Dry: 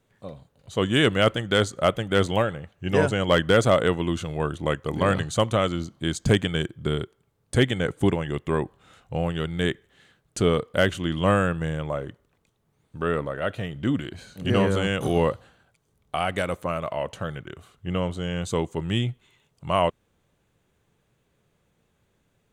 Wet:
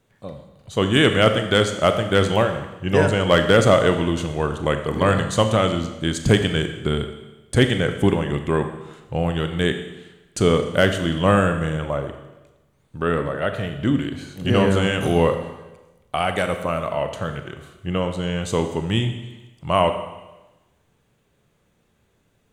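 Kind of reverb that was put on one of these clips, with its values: Schroeder reverb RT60 1.1 s, combs from 28 ms, DRR 7 dB; trim +3.5 dB

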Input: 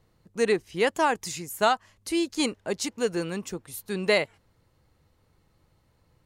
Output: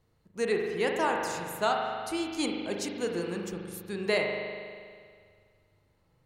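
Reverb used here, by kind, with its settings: spring tank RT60 2 s, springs 40 ms, chirp 35 ms, DRR 1 dB; trim -6 dB

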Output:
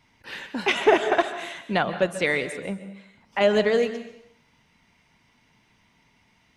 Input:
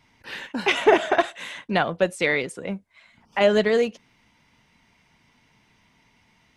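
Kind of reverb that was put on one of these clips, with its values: plate-style reverb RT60 0.76 s, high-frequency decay 0.95×, pre-delay 120 ms, DRR 11 dB; trim -1.5 dB

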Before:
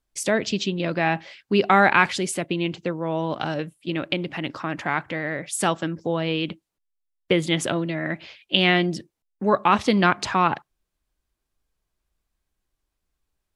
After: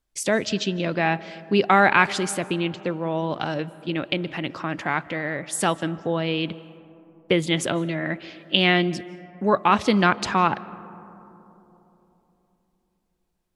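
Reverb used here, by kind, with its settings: algorithmic reverb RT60 3.5 s, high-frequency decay 0.25×, pre-delay 115 ms, DRR 18.5 dB

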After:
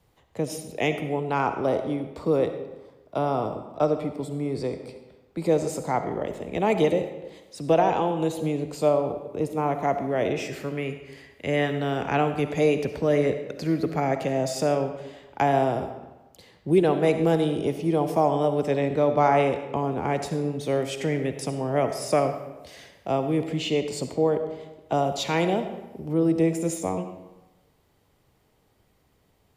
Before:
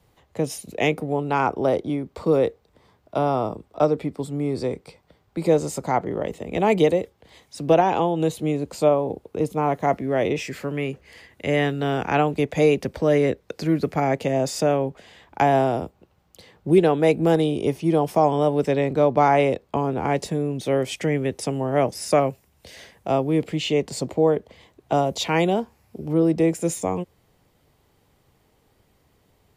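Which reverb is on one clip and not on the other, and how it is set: algorithmic reverb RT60 1.1 s, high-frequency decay 0.75×, pre-delay 25 ms, DRR 8 dB; trim -3.5 dB

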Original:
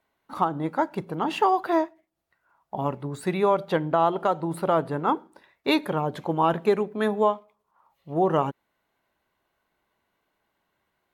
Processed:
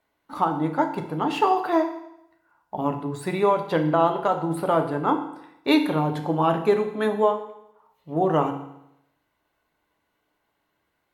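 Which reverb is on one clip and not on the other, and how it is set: FDN reverb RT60 0.81 s, low-frequency decay 1×, high-frequency decay 0.95×, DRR 4.5 dB

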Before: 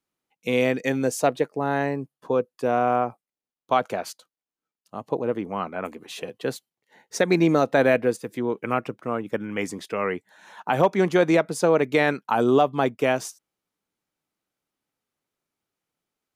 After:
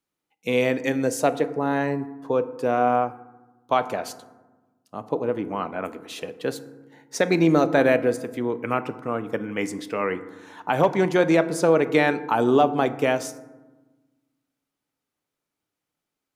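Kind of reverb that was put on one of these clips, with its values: FDN reverb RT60 1.2 s, low-frequency decay 1.5×, high-frequency decay 0.4×, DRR 11.5 dB

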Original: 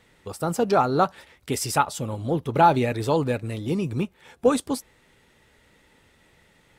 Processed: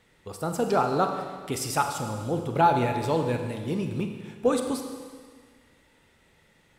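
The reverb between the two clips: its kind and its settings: Schroeder reverb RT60 1.7 s, combs from 33 ms, DRR 5 dB; trim -4 dB

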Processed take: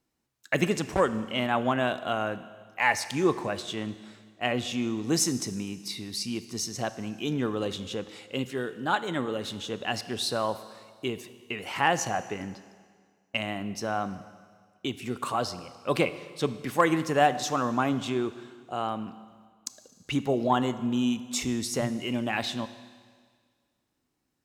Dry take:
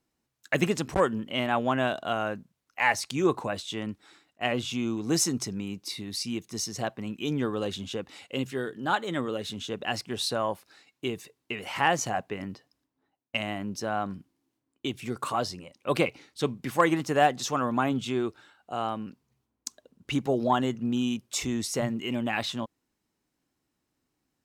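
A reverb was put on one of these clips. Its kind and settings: Schroeder reverb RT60 1.8 s, combs from 25 ms, DRR 13 dB

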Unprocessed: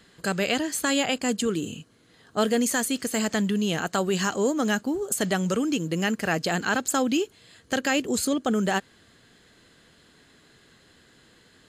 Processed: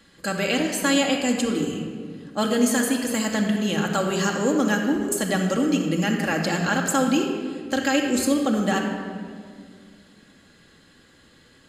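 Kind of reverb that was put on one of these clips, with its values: simulated room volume 3700 m³, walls mixed, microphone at 2.3 m; trim -1 dB

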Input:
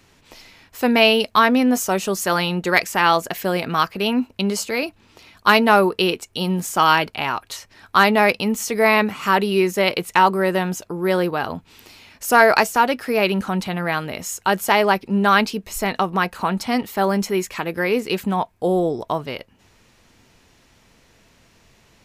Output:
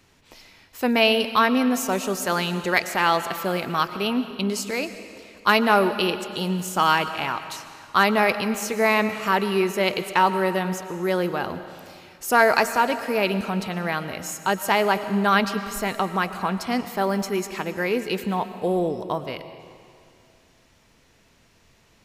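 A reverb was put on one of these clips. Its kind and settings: algorithmic reverb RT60 2.3 s, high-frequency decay 0.95×, pre-delay 75 ms, DRR 11 dB; trim -4 dB

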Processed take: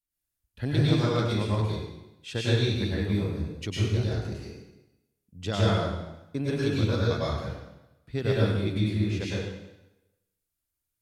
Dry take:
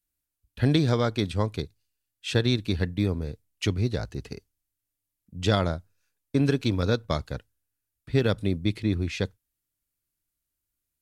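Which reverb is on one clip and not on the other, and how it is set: plate-style reverb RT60 0.97 s, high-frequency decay 0.9×, pre-delay 90 ms, DRR -7 dB; trim -8.5 dB

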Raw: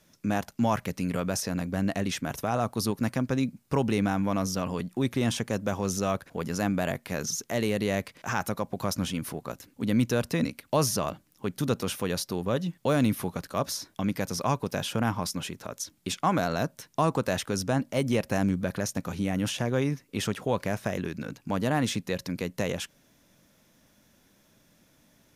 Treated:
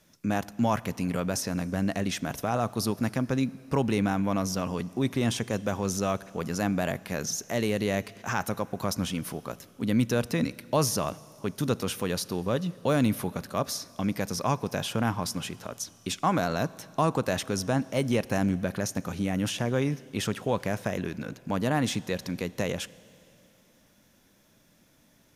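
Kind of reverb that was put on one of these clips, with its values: Schroeder reverb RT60 2.9 s, combs from 26 ms, DRR 19.5 dB

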